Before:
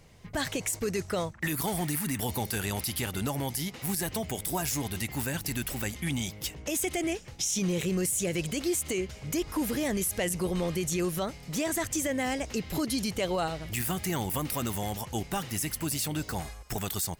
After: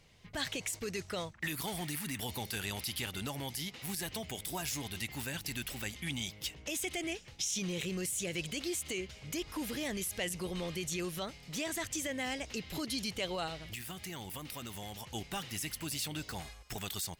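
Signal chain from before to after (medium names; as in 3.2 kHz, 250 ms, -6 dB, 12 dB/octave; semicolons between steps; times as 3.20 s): peaking EQ 3.3 kHz +8.5 dB 1.7 oct; 13.58–15.06 s: compression, threshold -31 dBFS, peak gain reduction 7 dB; trim -9 dB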